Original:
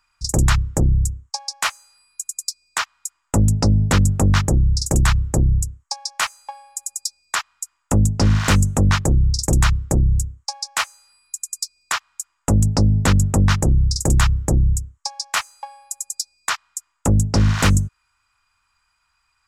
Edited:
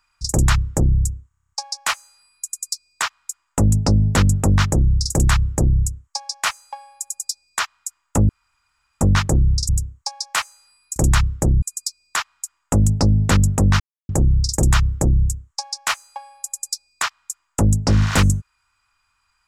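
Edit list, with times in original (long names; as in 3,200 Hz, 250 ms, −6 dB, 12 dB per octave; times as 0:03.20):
0:01.28: stutter 0.03 s, 9 plays
0:08.05–0:08.77: fill with room tone
0:09.45–0:10.11: move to 0:11.38
0:13.56: splice in silence 0.29 s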